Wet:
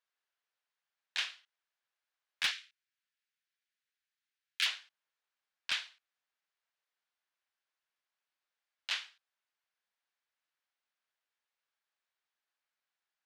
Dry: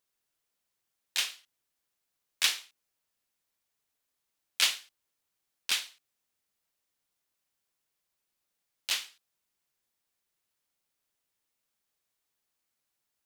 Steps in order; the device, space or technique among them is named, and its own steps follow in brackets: megaphone (band-pass 660–3900 Hz; peaking EQ 1.6 kHz +4.5 dB 0.39 oct; hard clipper -21 dBFS, distortion -16 dB); 2.51–4.66 s: high-pass 1.5 kHz 24 dB/octave; trim -2.5 dB

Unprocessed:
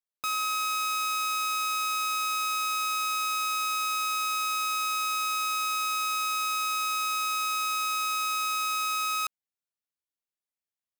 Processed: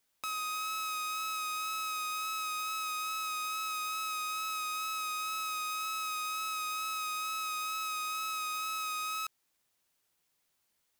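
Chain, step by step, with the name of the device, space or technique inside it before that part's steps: noise-reduction cassette on a plain deck (tape noise reduction on one side only encoder only; wow and flutter 22 cents; white noise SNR 41 dB); trim -7 dB

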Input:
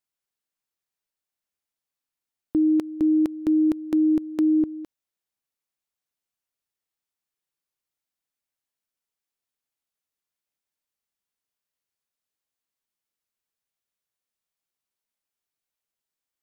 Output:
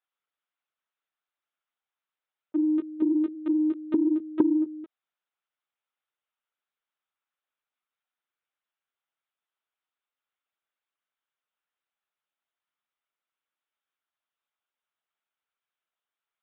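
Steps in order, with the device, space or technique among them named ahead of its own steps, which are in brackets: 4.39–4.82 s: peaking EQ 880 Hz +11 dB -> +3 dB 0.9 oct; talking toy (LPC vocoder at 8 kHz pitch kept; high-pass 400 Hz 12 dB/octave; peaking EQ 1.3 kHz +6.5 dB 0.47 oct; saturation -11 dBFS, distortion -20 dB); trim +1.5 dB

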